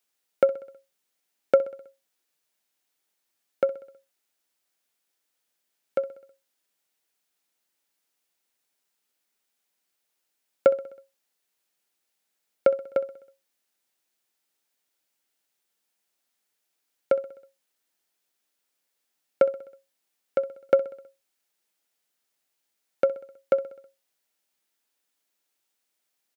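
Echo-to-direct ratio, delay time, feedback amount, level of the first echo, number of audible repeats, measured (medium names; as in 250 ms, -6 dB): -16.0 dB, 64 ms, 58%, -18.0 dB, 4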